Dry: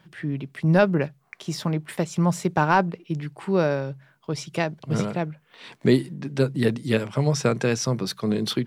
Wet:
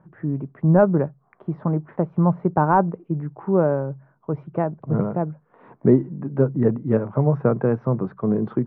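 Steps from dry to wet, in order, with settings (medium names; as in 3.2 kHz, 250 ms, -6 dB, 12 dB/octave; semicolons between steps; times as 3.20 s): low-pass 1.2 kHz 24 dB/octave; trim +3 dB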